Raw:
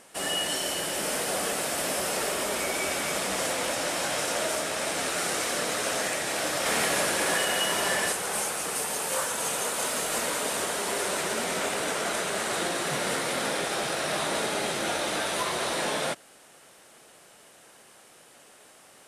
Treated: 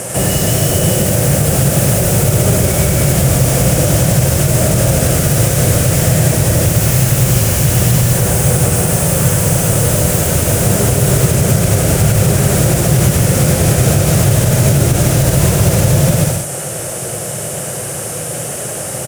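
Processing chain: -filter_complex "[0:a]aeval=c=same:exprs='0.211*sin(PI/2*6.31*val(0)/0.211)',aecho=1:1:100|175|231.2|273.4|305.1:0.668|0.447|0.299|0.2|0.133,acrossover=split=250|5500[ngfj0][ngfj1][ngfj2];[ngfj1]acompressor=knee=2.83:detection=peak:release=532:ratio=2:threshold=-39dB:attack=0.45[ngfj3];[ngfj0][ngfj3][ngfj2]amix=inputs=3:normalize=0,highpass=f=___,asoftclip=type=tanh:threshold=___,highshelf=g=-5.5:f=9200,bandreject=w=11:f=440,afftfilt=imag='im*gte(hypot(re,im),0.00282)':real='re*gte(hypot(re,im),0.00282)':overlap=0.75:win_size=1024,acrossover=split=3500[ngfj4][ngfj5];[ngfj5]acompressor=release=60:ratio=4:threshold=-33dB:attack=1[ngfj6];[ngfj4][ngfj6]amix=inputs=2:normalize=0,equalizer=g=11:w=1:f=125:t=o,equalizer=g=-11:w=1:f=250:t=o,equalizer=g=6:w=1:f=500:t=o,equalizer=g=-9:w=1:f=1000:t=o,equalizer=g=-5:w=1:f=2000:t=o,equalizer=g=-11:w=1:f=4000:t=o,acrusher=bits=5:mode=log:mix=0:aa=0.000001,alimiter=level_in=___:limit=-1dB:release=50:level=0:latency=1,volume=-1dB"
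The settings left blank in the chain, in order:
54, -8.5dB, 18dB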